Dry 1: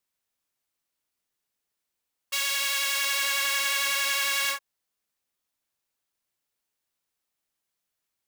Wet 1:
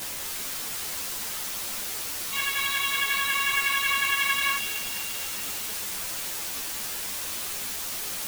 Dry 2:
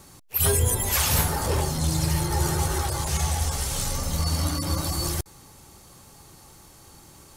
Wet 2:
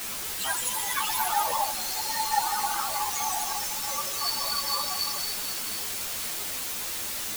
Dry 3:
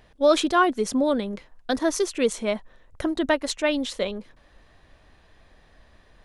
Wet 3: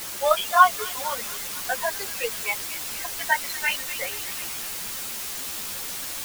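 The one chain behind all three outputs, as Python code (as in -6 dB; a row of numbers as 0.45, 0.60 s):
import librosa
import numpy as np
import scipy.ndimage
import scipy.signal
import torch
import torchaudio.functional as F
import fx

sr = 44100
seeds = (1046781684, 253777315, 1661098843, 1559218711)

p1 = fx.dead_time(x, sr, dead_ms=0.076)
p2 = scipy.signal.sosfilt(scipy.signal.cheby2(4, 40, 330.0, 'highpass', fs=sr, output='sos'), p1)
p3 = fx.noise_reduce_blind(p2, sr, reduce_db=17)
p4 = np.clip(10.0 ** (24.5 / 20.0) * p3, -1.0, 1.0) / 10.0 ** (24.5 / 20.0)
p5 = p3 + F.gain(torch.from_numpy(p4), -5.0).numpy()
p6 = fx.spec_topn(p5, sr, count=16)
p7 = fx.quant_dither(p6, sr, seeds[0], bits=6, dither='triangular')
p8 = p7 + fx.echo_wet_highpass(p7, sr, ms=241, feedback_pct=64, hz=2700.0, wet_db=-6.0, dry=0)
p9 = fx.ensemble(p8, sr)
y = F.gain(torch.from_numpy(p9), 5.5).numpy()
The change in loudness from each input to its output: -2.0, -2.5, -1.0 LU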